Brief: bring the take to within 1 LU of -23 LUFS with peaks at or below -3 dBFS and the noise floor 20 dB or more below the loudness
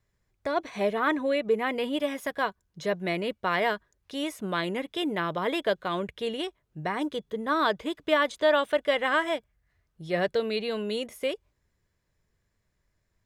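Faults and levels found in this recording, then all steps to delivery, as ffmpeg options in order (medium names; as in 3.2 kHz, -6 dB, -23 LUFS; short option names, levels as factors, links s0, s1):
loudness -28.5 LUFS; peak level -11.0 dBFS; loudness target -23.0 LUFS
-> -af "volume=1.88"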